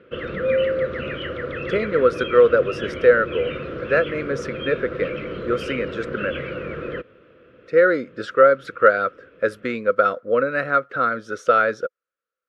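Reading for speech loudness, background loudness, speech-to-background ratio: −20.5 LKFS, −28.5 LKFS, 8.0 dB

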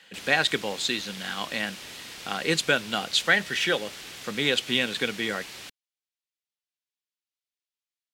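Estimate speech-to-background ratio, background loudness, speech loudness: 13.5 dB, −39.5 LKFS, −26.0 LKFS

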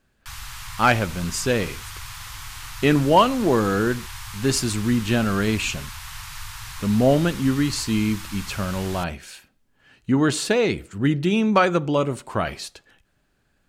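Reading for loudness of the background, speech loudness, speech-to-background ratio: −36.0 LKFS, −22.0 LKFS, 14.0 dB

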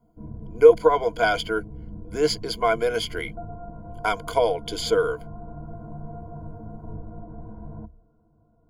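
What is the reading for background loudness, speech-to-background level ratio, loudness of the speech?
−40.5 LKFS, 18.0 dB, −22.5 LKFS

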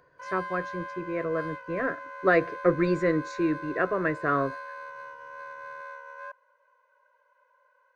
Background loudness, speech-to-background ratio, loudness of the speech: −39.5 LKFS, 11.5 dB, −28.0 LKFS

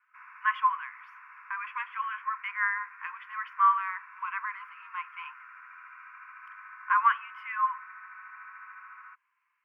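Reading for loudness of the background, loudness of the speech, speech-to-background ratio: −48.0 LKFS, −30.0 LKFS, 18.0 dB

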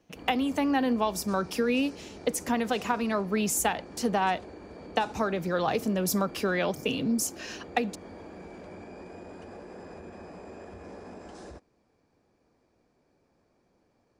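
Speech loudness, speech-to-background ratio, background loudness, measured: −28.5 LKFS, 17.0 dB, −45.5 LKFS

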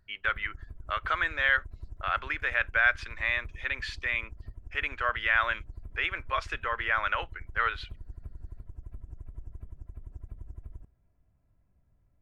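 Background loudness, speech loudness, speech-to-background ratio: −47.5 LKFS, −29.5 LKFS, 18.0 dB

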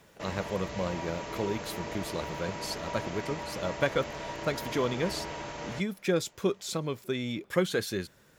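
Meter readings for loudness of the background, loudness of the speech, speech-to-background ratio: −38.5 LKFS, −33.0 LKFS, 5.5 dB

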